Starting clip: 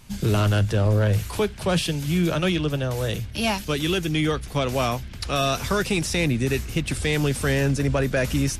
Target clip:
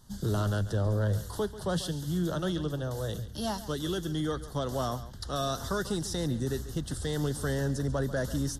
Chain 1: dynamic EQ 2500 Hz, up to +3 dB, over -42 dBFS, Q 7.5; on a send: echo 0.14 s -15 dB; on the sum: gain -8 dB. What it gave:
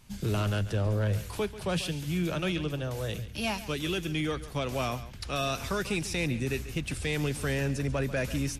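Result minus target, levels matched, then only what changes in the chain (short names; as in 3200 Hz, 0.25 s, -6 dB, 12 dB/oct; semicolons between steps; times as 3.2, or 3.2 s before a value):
2000 Hz band +5.5 dB
add after dynamic EQ: Butterworth band-stop 2400 Hz, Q 1.5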